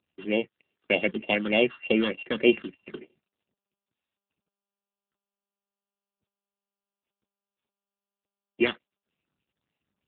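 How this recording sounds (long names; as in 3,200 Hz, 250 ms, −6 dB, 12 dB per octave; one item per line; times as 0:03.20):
a buzz of ramps at a fixed pitch in blocks of 16 samples
phaser sweep stages 6, 3.3 Hz, lowest notch 620–1,500 Hz
AMR narrowband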